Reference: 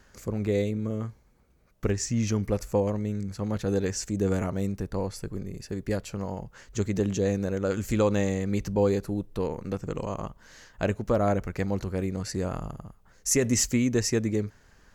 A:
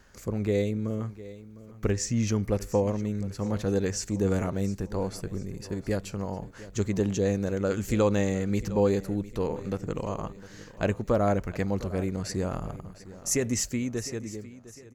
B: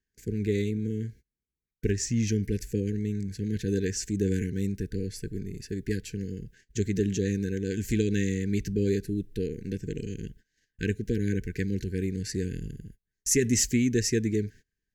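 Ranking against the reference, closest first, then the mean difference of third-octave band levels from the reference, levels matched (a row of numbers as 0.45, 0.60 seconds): A, B; 2.5, 6.0 decibels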